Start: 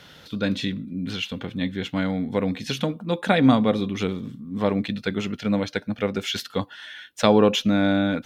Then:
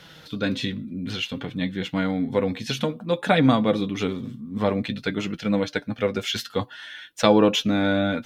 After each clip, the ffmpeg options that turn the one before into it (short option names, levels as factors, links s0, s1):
-af "flanger=delay=6:depth=2.7:regen=44:speed=0.55:shape=sinusoidal,volume=1.68"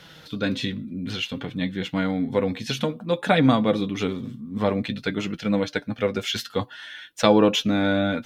-af anull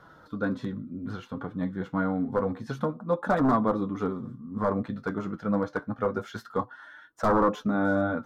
-af "aeval=exprs='0.211*(abs(mod(val(0)/0.211+3,4)-2)-1)':c=same,highshelf=f=1800:t=q:w=3:g=-13,flanger=delay=2.9:depth=8.6:regen=-64:speed=0.28:shape=sinusoidal"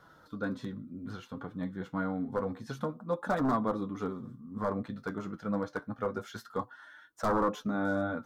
-af "highshelf=f=3900:g=8.5,volume=0.501"